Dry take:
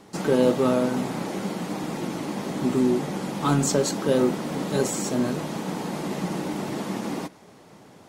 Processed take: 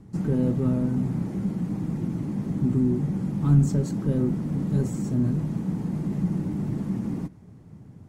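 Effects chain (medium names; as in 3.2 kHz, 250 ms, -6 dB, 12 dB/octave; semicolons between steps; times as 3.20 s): bass shelf 330 Hz +6.5 dB; in parallel at -4.5 dB: saturation -22 dBFS, distortion -7 dB; on the sum: FFT filter 110 Hz 0 dB, 570 Hz -22 dB, 1.9 kHz -21 dB, 3.6 kHz -27 dB, 7.7 kHz -22 dB; trim +4 dB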